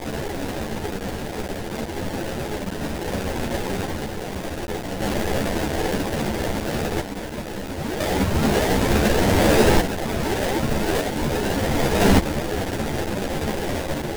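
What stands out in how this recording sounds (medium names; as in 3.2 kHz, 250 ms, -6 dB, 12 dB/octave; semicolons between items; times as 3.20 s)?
a quantiser's noise floor 6-bit, dither triangular; random-step tremolo 1 Hz; aliases and images of a low sample rate 1.2 kHz, jitter 20%; a shimmering, thickened sound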